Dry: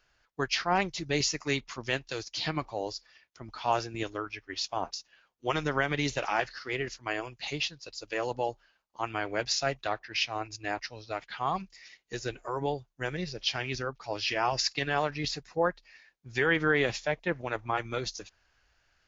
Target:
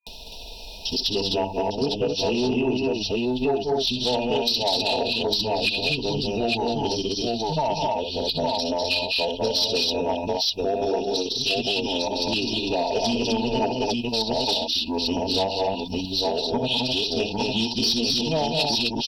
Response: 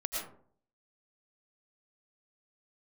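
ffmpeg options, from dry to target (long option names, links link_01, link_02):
-filter_complex "[0:a]areverse,asplit=2[link_01][link_02];[link_02]acompressor=mode=upward:threshold=-30dB:ratio=2.5,volume=-2.5dB[link_03];[link_01][link_03]amix=inputs=2:normalize=0,afftfilt=real='re*(1-between(b*sr/4096,1200,3000))':imag='im*(1-between(b*sr/4096,1200,3000))':win_size=4096:overlap=0.75,asetrate=36028,aresample=44100,atempo=1.22405,highshelf=frequency=4000:gain=9,aecho=1:1:4.5:0.55,aecho=1:1:63|73|79|200|255|853:0.335|0.133|0.119|0.531|0.596|0.631,acompressor=threshold=-31dB:ratio=3,asoftclip=type=tanh:threshold=-21dB,volume=8.5dB"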